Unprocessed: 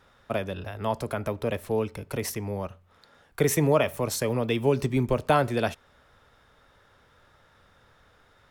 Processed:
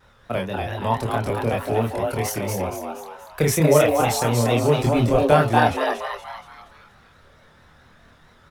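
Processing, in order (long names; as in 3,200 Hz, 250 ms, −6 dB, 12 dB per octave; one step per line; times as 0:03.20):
pitch vibrato 4.5 Hz 85 cents
echo with shifted repeats 236 ms, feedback 46%, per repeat +150 Hz, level −3.5 dB
multi-voice chorus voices 6, 0.35 Hz, delay 26 ms, depth 1.2 ms
level +7 dB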